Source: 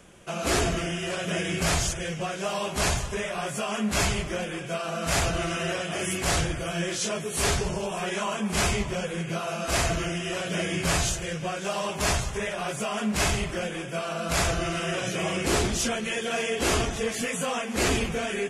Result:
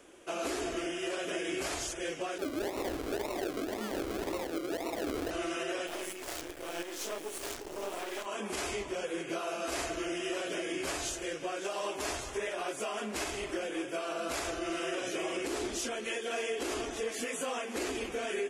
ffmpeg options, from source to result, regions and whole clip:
ffmpeg -i in.wav -filter_complex "[0:a]asettb=1/sr,asplit=3[link_01][link_02][link_03];[link_01]atrim=end=2.384[link_04];[link_02]atrim=start=2.38:end=5.31,asetpts=PTS-STARTPTS,afade=type=in:duration=0.004:curve=qsin,afade=type=out:start_time=2.926:duration=0.004:curve=qsin,aecho=1:1:284:0.376,atrim=end_sample=129213,acrusher=samples=39:mix=1:aa=0.000001:lfo=1:lforange=23.4:lforate=1.9[link_05];[link_03]atrim=start=5.306[link_06];[link_04][link_05]acrossfade=duration=0.004:curve1=hsin:curve2=qsin[link_07];[link_07][link_06]acrossfade=duration=0.004:curve1=qsin:curve2=hsin,asettb=1/sr,asplit=3[link_08][link_09][link_10];[link_08]atrim=end=5.874[link_11];[link_09]atrim=start=5.87:end=8.26,asetpts=PTS-STARTPTS,afade=type=in:duration=0.004:curve=qsin,afade=type=out:start_time=2.386:duration=0.004:curve=qsin,equalizer=frequency=600:width_type=o:width=0.3:gain=3.5,acrusher=bits=4:dc=4:mix=0:aa=0.000001[link_12];[link_10]atrim=start=8.256[link_13];[link_11][link_12]acrossfade=duration=0.004:curve1=hsin:curve2=qsin[link_14];[link_14][link_13]acrossfade=duration=0.004:curve1=qsin:curve2=hsin,lowshelf=frequency=230:width_type=q:width=3:gain=-9.5,alimiter=limit=-21dB:level=0:latency=1:release=231,volume=-4.5dB" out.wav

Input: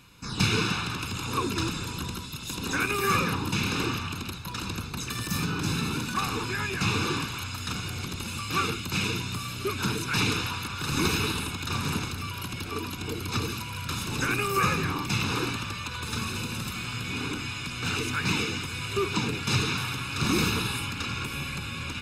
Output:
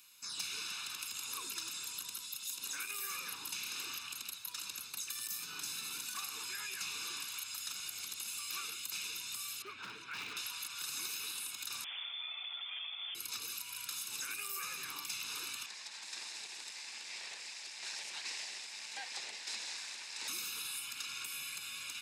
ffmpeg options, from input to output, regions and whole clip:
ffmpeg -i in.wav -filter_complex "[0:a]asettb=1/sr,asplit=3[link_01][link_02][link_03];[link_01]atrim=end=9.624[link_04];[link_02]atrim=start=9.62:end=10.37,asetpts=PTS-STARTPTS,afade=type=in:duration=0.004:curve=qsin,afade=type=out:start_time=0.746:duration=0.004:curve=qsin,lowpass=2100,volume=22.5dB,asoftclip=hard,volume=-22.5dB[link_05];[link_03]atrim=start=10.366[link_06];[link_04][link_05]acrossfade=duration=0.004:curve1=hsin:curve2=qsin[link_07];[link_07][link_06]acrossfade=duration=0.004:curve1=qsin:curve2=hsin,asettb=1/sr,asplit=3[link_08][link_09][link_10];[link_08]atrim=end=11.844[link_11];[link_09]atrim=start=11.84:end=13.15,asetpts=PTS-STARTPTS,afade=type=in:duration=0.004:curve=qsin,afade=type=out:start_time=1.306:duration=0.004:curve=qsin,aeval=exprs='0.0335*(abs(mod(val(0)/0.0335+3,4)-2)-1)':channel_layout=same,lowpass=frequency=3100:width_type=q:width=0.5098,lowpass=frequency=3100:width_type=q:width=0.6013,lowpass=frequency=3100:width_type=q:width=0.9,lowpass=frequency=3100:width_type=q:width=2.563,afreqshift=-3600[link_12];[link_10]atrim=start=13.146[link_13];[link_11][link_12]acrossfade=duration=0.004:curve1=hsin:curve2=qsin[link_14];[link_14][link_13]acrossfade=duration=0.004:curve1=qsin:curve2=hsin,asettb=1/sr,asplit=3[link_15][link_16][link_17];[link_15]atrim=end=15.664[link_18];[link_16]atrim=start=15.66:end=20.28,asetpts=PTS-STARTPTS,afade=type=in:duration=0.004:curve=qsin,afade=type=out:start_time=4.616:duration=0.004:curve=qsin,aeval=exprs='abs(val(0))':channel_layout=same,highpass=frequency=140:width=0.5412,highpass=frequency=140:width=1.3066,equalizer=frequency=270:width_type=q:width=4:gain=-4,equalizer=frequency=850:width_type=q:width=4:gain=7,equalizer=frequency=1300:width_type=q:width=4:gain=-9,equalizer=frequency=1800:width_type=q:width=4:gain=5,equalizer=frequency=3100:width_type=q:width=4:gain=-6,equalizer=frequency=6300:width_type=q:width=4:gain=-5,lowpass=frequency=7100:width=0.5412,lowpass=frequency=7100:width=1.3066[link_19];[link_17]atrim=start=20.276[link_20];[link_18][link_19]acrossfade=duration=0.004:curve1=hsin:curve2=qsin[link_21];[link_21][link_20]acrossfade=duration=0.004:curve1=qsin:curve2=hsin,aderivative,acompressor=threshold=-39dB:ratio=6,volume=1dB" out.wav

